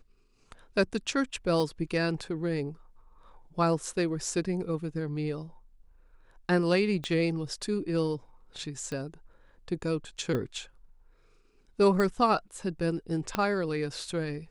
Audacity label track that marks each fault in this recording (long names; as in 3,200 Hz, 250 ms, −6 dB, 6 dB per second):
1.600000	1.600000	drop-out 2.5 ms
7.040000	7.040000	click −20 dBFS
8.920000	8.920000	click −24 dBFS
10.350000	10.350000	click −20 dBFS
12.000000	12.000000	click −17 dBFS
13.350000	13.350000	click −13 dBFS